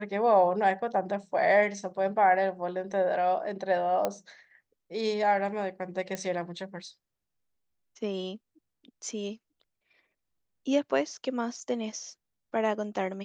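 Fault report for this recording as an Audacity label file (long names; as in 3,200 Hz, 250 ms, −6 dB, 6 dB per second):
4.050000	4.050000	click −14 dBFS
6.150000	6.150000	click −19 dBFS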